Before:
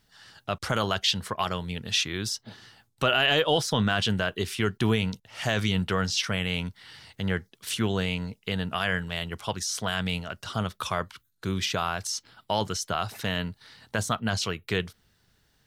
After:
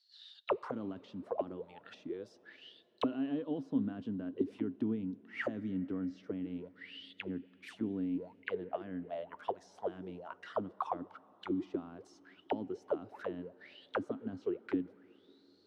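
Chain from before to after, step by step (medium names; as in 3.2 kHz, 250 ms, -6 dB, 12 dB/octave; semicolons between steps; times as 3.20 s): high-pass 40 Hz; auto-wah 270–4400 Hz, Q 17, down, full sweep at -24 dBFS; on a send: reverberation RT60 4.9 s, pre-delay 3 ms, DRR 22 dB; on the sum: trim +9.5 dB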